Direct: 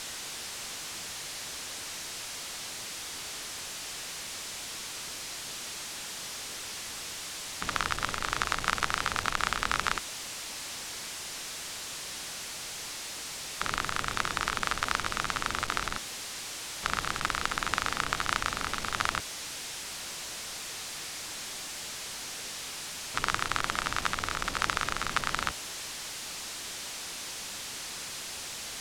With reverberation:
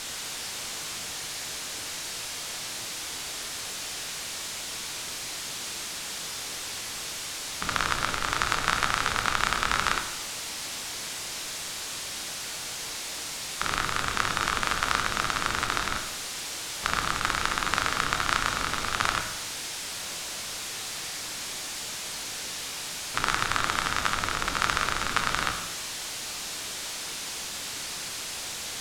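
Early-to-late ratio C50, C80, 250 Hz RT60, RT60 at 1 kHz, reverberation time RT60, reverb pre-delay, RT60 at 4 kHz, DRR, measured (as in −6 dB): 7.5 dB, 10.0 dB, 0.85 s, 0.90 s, 0.85 s, 18 ms, 0.90 s, 4.5 dB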